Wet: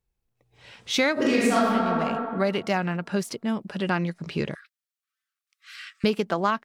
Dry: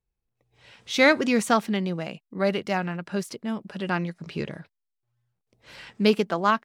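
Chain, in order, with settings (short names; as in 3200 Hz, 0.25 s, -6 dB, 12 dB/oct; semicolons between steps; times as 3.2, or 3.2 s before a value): 1.13–1.65 reverb throw, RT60 1.7 s, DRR -9.5 dB; 4.55–6.04 brick-wall FIR high-pass 1100 Hz; compressor 5:1, threshold -23 dBFS, peak gain reduction 14 dB; gain +3.5 dB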